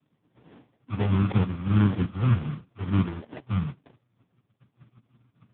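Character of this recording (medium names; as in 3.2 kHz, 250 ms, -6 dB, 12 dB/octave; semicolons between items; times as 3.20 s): a buzz of ramps at a fixed pitch in blocks of 8 samples; phasing stages 12, 1.7 Hz, lowest notch 300–2800 Hz; aliases and images of a low sample rate 1.3 kHz, jitter 20%; AMR-NB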